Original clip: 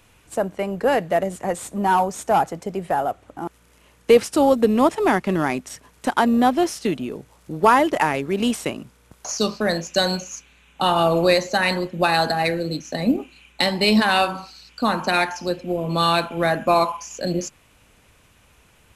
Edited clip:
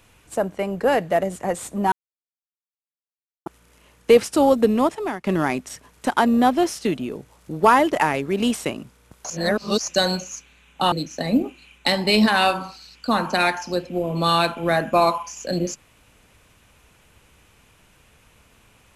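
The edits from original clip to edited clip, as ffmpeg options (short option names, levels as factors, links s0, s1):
-filter_complex "[0:a]asplit=7[s0][s1][s2][s3][s4][s5][s6];[s0]atrim=end=1.92,asetpts=PTS-STARTPTS,afade=t=out:st=1.916:d=0.004:c=hsin[s7];[s1]atrim=start=1.92:end=3.46,asetpts=PTS-STARTPTS,volume=0[s8];[s2]atrim=start=3.46:end=5.24,asetpts=PTS-STARTPTS,afade=t=in:d=0.004:c=hsin,afade=t=out:st=1.2:d=0.58:silence=0.141254[s9];[s3]atrim=start=5.24:end=9.302,asetpts=PTS-STARTPTS,afade=t=in:d=0.004:c=hsin:silence=0.141254[s10];[s4]atrim=start=9.298:end=9.882,asetpts=PTS-STARTPTS,areverse[s11];[s5]atrim=start=9.878:end=10.922[s12];[s6]atrim=start=12.658[s13];[s7][s8][s9][s10]concat=n=4:v=0:a=1[s14];[s14][s11]acrossfade=d=0.004:c1=hsin:c2=hsin[s15];[s15][s12]acrossfade=d=0.004:c1=hsin:c2=hsin[s16];[s16][s13]acrossfade=d=0.004:c1=hsin:c2=hsin"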